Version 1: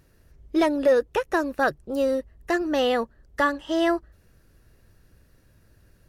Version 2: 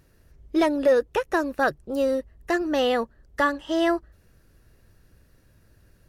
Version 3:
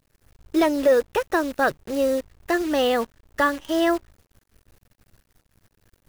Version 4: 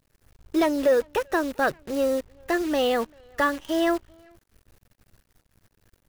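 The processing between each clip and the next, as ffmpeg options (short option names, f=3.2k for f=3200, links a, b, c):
-af anull
-af "acrusher=bits=7:dc=4:mix=0:aa=0.000001,agate=range=-8dB:threshold=-58dB:ratio=16:detection=peak,volume=1.5dB"
-filter_complex "[0:a]asplit=2[a][b];[b]volume=21.5dB,asoftclip=hard,volume=-21.5dB,volume=-11dB[c];[a][c]amix=inputs=2:normalize=0,asplit=2[d][e];[e]adelay=390,highpass=300,lowpass=3.4k,asoftclip=type=hard:threshold=-19dB,volume=-27dB[f];[d][f]amix=inputs=2:normalize=0,volume=-3.5dB"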